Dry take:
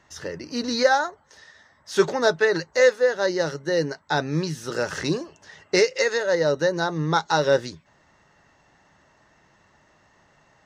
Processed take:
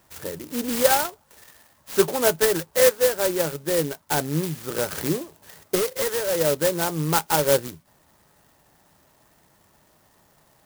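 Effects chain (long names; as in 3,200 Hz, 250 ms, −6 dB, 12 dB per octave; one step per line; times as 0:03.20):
0:05.75–0:06.37: hard clipping −20.5 dBFS, distortion −16 dB
converter with an unsteady clock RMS 0.11 ms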